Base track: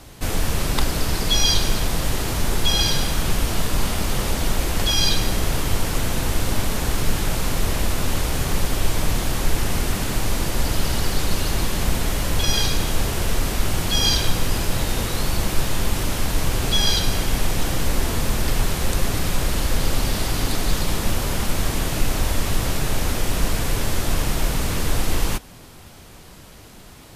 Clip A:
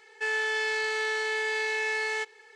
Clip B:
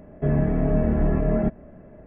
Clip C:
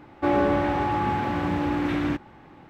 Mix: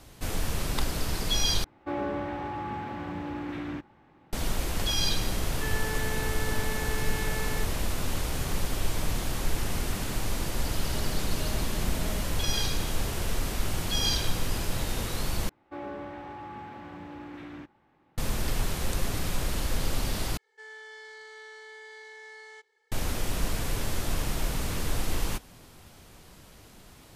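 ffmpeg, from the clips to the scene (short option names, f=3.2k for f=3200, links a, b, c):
-filter_complex "[3:a]asplit=2[a][b];[1:a]asplit=2[c][d];[0:a]volume=-8dB[e];[c]lowpass=1.7k[f];[b]lowshelf=f=230:g=-3.5[g];[d]bandreject=f=2.6k:w=6.3[h];[e]asplit=4[i][j][k][l];[i]atrim=end=1.644[m];[a]atrim=end=2.69,asetpts=PTS-STARTPTS,volume=-10dB[n];[j]atrim=start=4.326:end=15.494[o];[g]atrim=end=2.69,asetpts=PTS-STARTPTS,volume=-16dB[p];[k]atrim=start=18.176:end=20.374[q];[h]atrim=end=2.55,asetpts=PTS-STARTPTS,volume=-17dB[r];[l]atrim=start=22.916[s];[f]atrim=end=2.55,asetpts=PTS-STARTPTS,volume=-5dB,afade=t=in:d=0.004:c=hsin,afade=t=out:st=2.546:d=0.004:c=hsin,adelay=5400[t];[2:a]atrim=end=2.06,asetpts=PTS-STARTPTS,volume=-17.5dB,afade=t=in:d=0.004:c=hsin,afade=t=out:st=2.056:d=0.004:c=hsin,adelay=10720[u];[m][n]acrossfade=d=0.004:c1=hsin:c2=hsin[v];[v][o]acrossfade=d=0.004:c1=hsin:c2=hsin[w];[w][p]acrossfade=d=0.004:c1=hsin:c2=hsin[x];[x][q]acrossfade=d=0.004:c1=hsin:c2=hsin[y];[y][r]acrossfade=d=0.004:c1=hsin:c2=hsin[z];[z][s]acrossfade=d=0.004:c1=hsin:c2=hsin[aa];[aa][t][u]amix=inputs=3:normalize=0"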